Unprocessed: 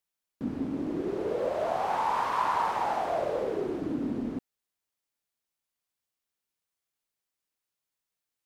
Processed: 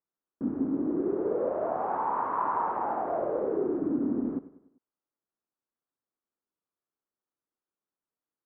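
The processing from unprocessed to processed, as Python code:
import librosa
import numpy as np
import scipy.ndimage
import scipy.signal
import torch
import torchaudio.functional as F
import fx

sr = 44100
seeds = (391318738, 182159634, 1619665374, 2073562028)

p1 = fx.ladder_lowpass(x, sr, hz=1600.0, resonance_pct=40)
p2 = fx.peak_eq(p1, sr, hz=310.0, db=12.0, octaves=1.9)
y = p2 + fx.echo_feedback(p2, sr, ms=98, feedback_pct=47, wet_db=-15.5, dry=0)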